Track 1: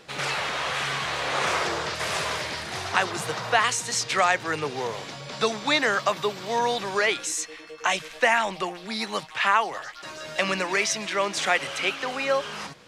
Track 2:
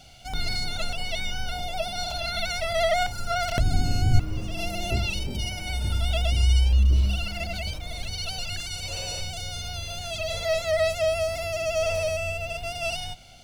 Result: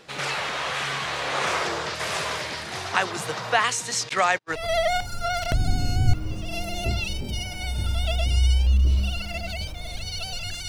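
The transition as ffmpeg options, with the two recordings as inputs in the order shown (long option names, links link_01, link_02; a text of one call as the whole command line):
ffmpeg -i cue0.wav -i cue1.wav -filter_complex "[0:a]asettb=1/sr,asplit=3[link_01][link_02][link_03];[link_01]atrim=end=4.094[link_04];[link_02]atrim=start=4.09:end=4.67,asetpts=PTS-STARTPTS,afade=type=in:duration=0.004:curve=qsin,afade=type=out:start_time=0.576:duration=0.004:curve=qsin,agate=range=-45dB:threshold=-28dB:ratio=16:release=100:detection=peak[link_05];[link_03]atrim=start=4.666[link_06];[link_04][link_05]acrossfade=duration=0.004:curve1=hsin:curve2=qsin[link_07];[link_07][link_06]acrossfade=duration=0.004:curve1=qsin:curve2=hsin,apad=whole_dur=10.68,atrim=end=10.68,atrim=end=4.67,asetpts=PTS-STARTPTS[link_08];[1:a]atrim=start=2.57:end=8.74,asetpts=PTS-STARTPTS[link_09];[link_08][link_09]acrossfade=duration=0.16:curve1=tri:curve2=tri" out.wav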